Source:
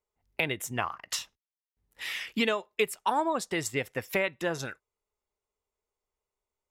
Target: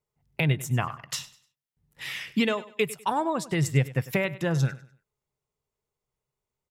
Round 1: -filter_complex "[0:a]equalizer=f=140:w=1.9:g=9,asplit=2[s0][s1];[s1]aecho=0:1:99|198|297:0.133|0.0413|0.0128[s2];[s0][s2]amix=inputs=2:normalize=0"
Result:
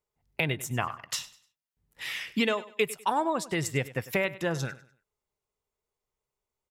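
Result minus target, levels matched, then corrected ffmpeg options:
125 Hz band -6.5 dB
-filter_complex "[0:a]equalizer=f=140:w=1.9:g=20,asplit=2[s0][s1];[s1]aecho=0:1:99|198|297:0.133|0.0413|0.0128[s2];[s0][s2]amix=inputs=2:normalize=0"

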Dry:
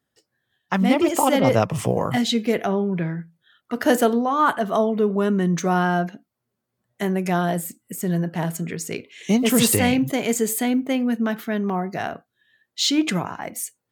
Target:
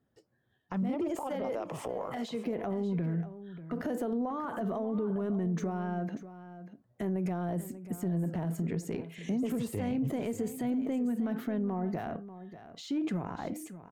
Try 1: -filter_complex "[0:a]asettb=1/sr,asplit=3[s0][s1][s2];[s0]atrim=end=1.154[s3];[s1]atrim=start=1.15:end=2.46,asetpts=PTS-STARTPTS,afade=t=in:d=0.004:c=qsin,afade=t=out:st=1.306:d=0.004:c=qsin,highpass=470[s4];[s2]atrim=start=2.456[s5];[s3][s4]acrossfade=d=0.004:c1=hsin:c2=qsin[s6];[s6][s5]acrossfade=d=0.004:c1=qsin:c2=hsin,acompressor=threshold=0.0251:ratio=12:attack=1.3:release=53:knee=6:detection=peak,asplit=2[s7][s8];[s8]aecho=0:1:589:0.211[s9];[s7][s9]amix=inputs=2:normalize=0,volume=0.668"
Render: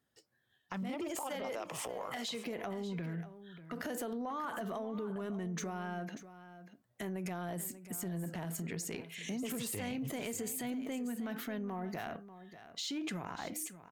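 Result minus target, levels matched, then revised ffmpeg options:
1 kHz band +2.5 dB
-filter_complex "[0:a]asettb=1/sr,asplit=3[s0][s1][s2];[s0]atrim=end=1.154[s3];[s1]atrim=start=1.15:end=2.46,asetpts=PTS-STARTPTS,afade=t=in:d=0.004:c=qsin,afade=t=out:st=1.306:d=0.004:c=qsin,highpass=470[s4];[s2]atrim=start=2.456[s5];[s3][s4]acrossfade=d=0.004:c1=hsin:c2=qsin[s6];[s6][s5]acrossfade=d=0.004:c1=qsin:c2=hsin,acompressor=threshold=0.0251:ratio=12:attack=1.3:release=53:knee=6:detection=peak,tiltshelf=f=1300:g=8.5,asplit=2[s7][s8];[s8]aecho=0:1:589:0.211[s9];[s7][s9]amix=inputs=2:normalize=0,volume=0.668"

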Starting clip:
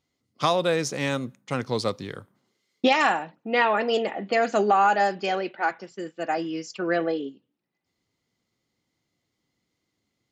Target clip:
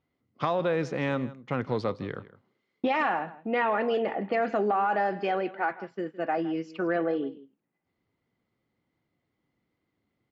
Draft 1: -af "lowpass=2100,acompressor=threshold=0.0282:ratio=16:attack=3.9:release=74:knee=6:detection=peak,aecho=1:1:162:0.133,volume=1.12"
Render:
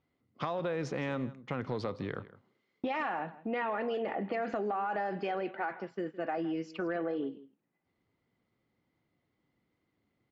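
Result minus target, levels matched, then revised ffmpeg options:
compression: peak gain reduction +8 dB
-af "lowpass=2100,acompressor=threshold=0.075:ratio=16:attack=3.9:release=74:knee=6:detection=peak,aecho=1:1:162:0.133,volume=1.12"

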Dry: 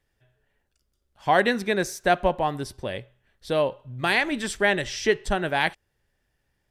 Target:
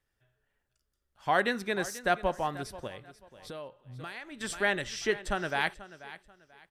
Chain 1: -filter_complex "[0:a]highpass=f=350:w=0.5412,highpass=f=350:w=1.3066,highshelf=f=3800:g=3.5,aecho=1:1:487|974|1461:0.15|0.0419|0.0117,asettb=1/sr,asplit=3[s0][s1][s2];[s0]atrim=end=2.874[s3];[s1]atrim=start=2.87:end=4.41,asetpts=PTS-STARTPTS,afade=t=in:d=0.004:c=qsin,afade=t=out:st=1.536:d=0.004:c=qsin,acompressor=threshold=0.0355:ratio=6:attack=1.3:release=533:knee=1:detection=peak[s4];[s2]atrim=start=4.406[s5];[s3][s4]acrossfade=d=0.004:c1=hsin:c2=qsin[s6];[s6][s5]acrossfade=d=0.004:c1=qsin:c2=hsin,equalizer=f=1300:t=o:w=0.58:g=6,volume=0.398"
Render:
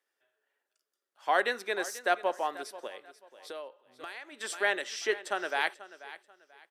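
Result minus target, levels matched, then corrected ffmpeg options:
250 Hz band -8.0 dB
-filter_complex "[0:a]highshelf=f=3800:g=3.5,aecho=1:1:487|974|1461:0.15|0.0419|0.0117,asettb=1/sr,asplit=3[s0][s1][s2];[s0]atrim=end=2.874[s3];[s1]atrim=start=2.87:end=4.41,asetpts=PTS-STARTPTS,afade=t=in:d=0.004:c=qsin,afade=t=out:st=1.536:d=0.004:c=qsin,acompressor=threshold=0.0355:ratio=6:attack=1.3:release=533:knee=1:detection=peak[s4];[s2]atrim=start=4.406[s5];[s3][s4]acrossfade=d=0.004:c1=hsin:c2=qsin[s6];[s6][s5]acrossfade=d=0.004:c1=qsin:c2=hsin,equalizer=f=1300:t=o:w=0.58:g=6,volume=0.398"

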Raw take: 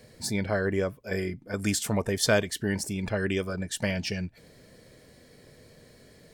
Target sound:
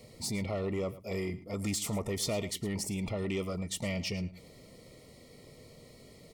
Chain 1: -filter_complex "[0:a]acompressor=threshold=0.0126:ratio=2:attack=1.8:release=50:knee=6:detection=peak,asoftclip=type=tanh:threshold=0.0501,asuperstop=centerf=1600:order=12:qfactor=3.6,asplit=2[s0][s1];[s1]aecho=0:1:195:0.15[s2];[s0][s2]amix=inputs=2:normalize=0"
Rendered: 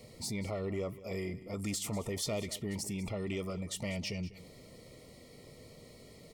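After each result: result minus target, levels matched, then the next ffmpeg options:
echo 85 ms late; compression: peak gain reduction +4 dB
-filter_complex "[0:a]acompressor=threshold=0.0126:ratio=2:attack=1.8:release=50:knee=6:detection=peak,asoftclip=type=tanh:threshold=0.0501,asuperstop=centerf=1600:order=12:qfactor=3.6,asplit=2[s0][s1];[s1]aecho=0:1:110:0.15[s2];[s0][s2]amix=inputs=2:normalize=0"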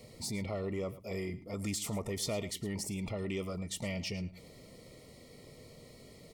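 compression: peak gain reduction +4 dB
-filter_complex "[0:a]acompressor=threshold=0.0316:ratio=2:attack=1.8:release=50:knee=6:detection=peak,asoftclip=type=tanh:threshold=0.0501,asuperstop=centerf=1600:order=12:qfactor=3.6,asplit=2[s0][s1];[s1]aecho=0:1:110:0.15[s2];[s0][s2]amix=inputs=2:normalize=0"

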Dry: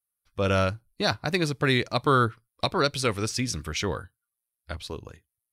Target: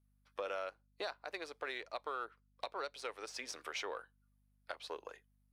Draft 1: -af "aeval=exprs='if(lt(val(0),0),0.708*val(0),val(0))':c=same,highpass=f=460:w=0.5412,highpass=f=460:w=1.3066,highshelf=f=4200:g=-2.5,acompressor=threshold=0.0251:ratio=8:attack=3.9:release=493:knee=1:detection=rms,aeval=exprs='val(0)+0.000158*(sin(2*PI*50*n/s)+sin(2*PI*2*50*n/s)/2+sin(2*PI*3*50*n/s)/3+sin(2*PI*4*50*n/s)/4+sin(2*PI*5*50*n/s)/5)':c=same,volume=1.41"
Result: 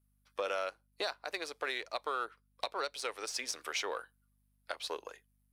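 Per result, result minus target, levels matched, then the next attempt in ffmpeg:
compression: peak gain reduction -4.5 dB; 8 kHz band +3.5 dB
-af "aeval=exprs='if(lt(val(0),0),0.708*val(0),val(0))':c=same,highpass=f=460:w=0.5412,highpass=f=460:w=1.3066,highshelf=f=4200:g=-2.5,acompressor=threshold=0.0126:ratio=8:attack=3.9:release=493:knee=1:detection=rms,aeval=exprs='val(0)+0.000158*(sin(2*PI*50*n/s)+sin(2*PI*2*50*n/s)/2+sin(2*PI*3*50*n/s)/3+sin(2*PI*4*50*n/s)/4+sin(2*PI*5*50*n/s)/5)':c=same,volume=1.41"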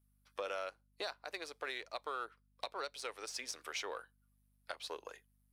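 8 kHz band +3.5 dB
-af "aeval=exprs='if(lt(val(0),0),0.708*val(0),val(0))':c=same,highpass=f=460:w=0.5412,highpass=f=460:w=1.3066,highshelf=f=4200:g=-12,acompressor=threshold=0.0126:ratio=8:attack=3.9:release=493:knee=1:detection=rms,aeval=exprs='val(0)+0.000158*(sin(2*PI*50*n/s)+sin(2*PI*2*50*n/s)/2+sin(2*PI*3*50*n/s)/3+sin(2*PI*4*50*n/s)/4+sin(2*PI*5*50*n/s)/5)':c=same,volume=1.41"

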